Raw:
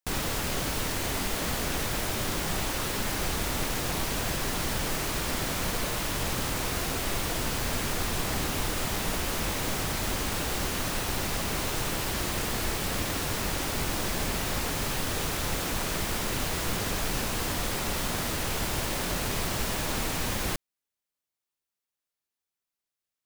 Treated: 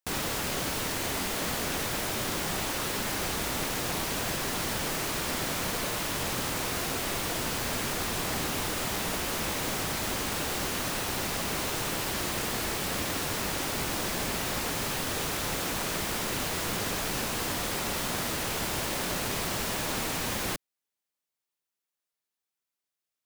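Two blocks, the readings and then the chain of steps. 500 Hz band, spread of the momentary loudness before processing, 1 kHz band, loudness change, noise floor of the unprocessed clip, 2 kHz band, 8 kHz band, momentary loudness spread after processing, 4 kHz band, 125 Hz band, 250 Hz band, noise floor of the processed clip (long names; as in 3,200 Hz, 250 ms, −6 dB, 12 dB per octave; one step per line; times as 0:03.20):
−0.5 dB, 0 LU, 0.0 dB, −0.5 dB, below −85 dBFS, 0.0 dB, 0.0 dB, 0 LU, 0.0 dB, −4.0 dB, −1.0 dB, below −85 dBFS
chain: low-shelf EQ 75 Hz −12 dB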